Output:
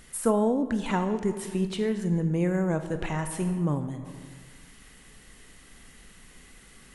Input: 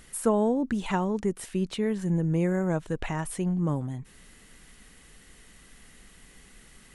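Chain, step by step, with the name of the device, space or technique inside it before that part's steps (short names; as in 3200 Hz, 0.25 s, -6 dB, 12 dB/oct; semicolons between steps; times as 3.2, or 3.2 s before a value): compressed reverb return (on a send at -3 dB: reverb RT60 1.5 s, pre-delay 18 ms + compressor, threshold -30 dBFS, peak gain reduction 9.5 dB)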